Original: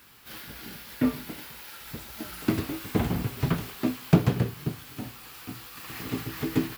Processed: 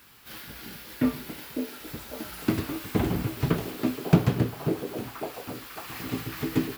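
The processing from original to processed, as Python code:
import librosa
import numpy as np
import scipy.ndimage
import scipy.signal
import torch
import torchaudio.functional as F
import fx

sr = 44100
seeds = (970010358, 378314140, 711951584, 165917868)

y = fx.echo_stepped(x, sr, ms=549, hz=410.0, octaves=0.7, feedback_pct=70, wet_db=-1.0)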